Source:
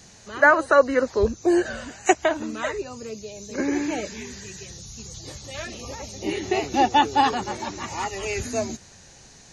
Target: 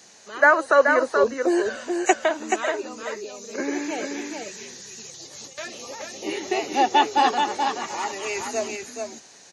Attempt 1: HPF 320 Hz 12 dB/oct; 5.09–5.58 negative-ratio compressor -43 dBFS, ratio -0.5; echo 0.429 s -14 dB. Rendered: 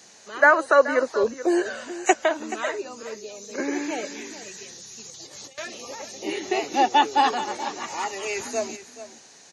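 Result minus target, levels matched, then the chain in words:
echo-to-direct -9 dB
HPF 320 Hz 12 dB/oct; 5.09–5.58 negative-ratio compressor -43 dBFS, ratio -0.5; echo 0.429 s -5 dB

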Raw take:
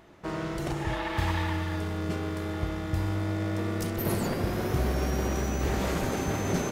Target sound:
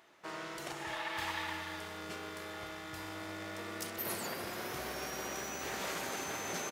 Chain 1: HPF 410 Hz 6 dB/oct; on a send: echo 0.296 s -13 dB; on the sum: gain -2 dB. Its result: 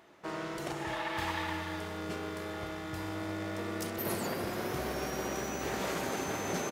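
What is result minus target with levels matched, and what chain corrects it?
500 Hz band +3.0 dB
HPF 1300 Hz 6 dB/oct; on a send: echo 0.296 s -13 dB; on the sum: gain -2 dB

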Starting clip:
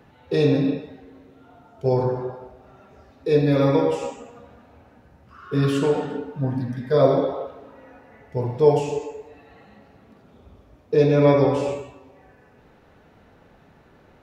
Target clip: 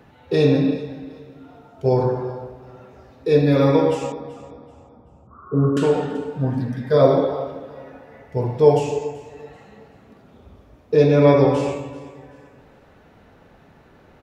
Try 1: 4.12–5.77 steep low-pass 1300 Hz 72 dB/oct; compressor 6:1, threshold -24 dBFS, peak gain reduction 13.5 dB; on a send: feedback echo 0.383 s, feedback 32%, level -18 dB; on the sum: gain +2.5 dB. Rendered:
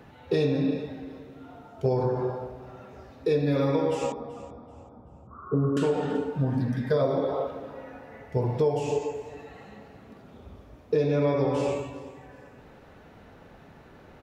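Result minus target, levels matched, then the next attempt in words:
compressor: peak gain reduction +13.5 dB
4.12–5.77 steep low-pass 1300 Hz 72 dB/oct; on a send: feedback echo 0.383 s, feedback 32%, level -18 dB; on the sum: gain +2.5 dB

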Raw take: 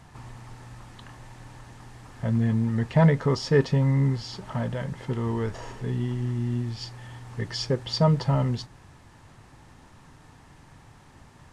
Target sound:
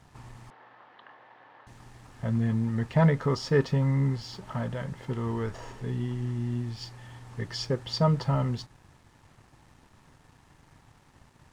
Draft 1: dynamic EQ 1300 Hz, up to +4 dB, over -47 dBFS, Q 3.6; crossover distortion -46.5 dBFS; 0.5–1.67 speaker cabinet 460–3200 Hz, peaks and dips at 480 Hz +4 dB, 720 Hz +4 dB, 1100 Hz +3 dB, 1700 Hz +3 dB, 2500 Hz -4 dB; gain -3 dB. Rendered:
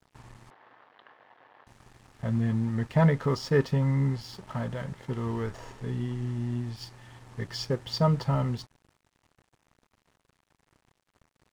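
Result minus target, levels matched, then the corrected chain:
crossover distortion: distortion +10 dB
dynamic EQ 1300 Hz, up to +4 dB, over -47 dBFS, Q 3.6; crossover distortion -58 dBFS; 0.5–1.67 speaker cabinet 460–3200 Hz, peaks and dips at 480 Hz +4 dB, 720 Hz +4 dB, 1100 Hz +3 dB, 1700 Hz +3 dB, 2500 Hz -4 dB; gain -3 dB

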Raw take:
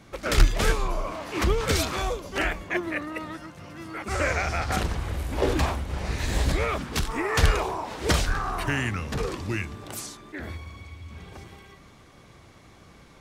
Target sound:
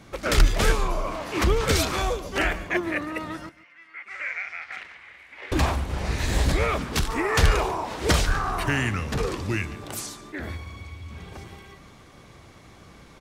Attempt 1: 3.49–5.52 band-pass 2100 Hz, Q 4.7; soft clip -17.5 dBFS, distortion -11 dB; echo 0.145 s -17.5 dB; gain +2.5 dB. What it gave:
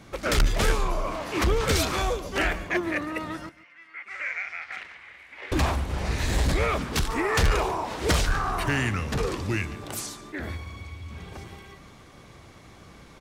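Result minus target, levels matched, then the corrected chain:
soft clip: distortion +9 dB
3.49–5.52 band-pass 2100 Hz, Q 4.7; soft clip -9.5 dBFS, distortion -20 dB; echo 0.145 s -17.5 dB; gain +2.5 dB

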